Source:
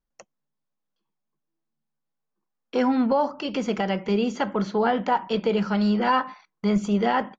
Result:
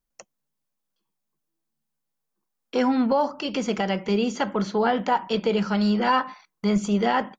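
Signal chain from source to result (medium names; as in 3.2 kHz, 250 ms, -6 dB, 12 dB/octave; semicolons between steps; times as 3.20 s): treble shelf 5.3 kHz +9 dB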